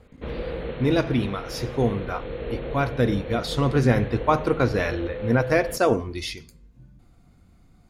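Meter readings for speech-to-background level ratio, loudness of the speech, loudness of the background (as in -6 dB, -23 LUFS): 10.0 dB, -24.0 LUFS, -34.0 LUFS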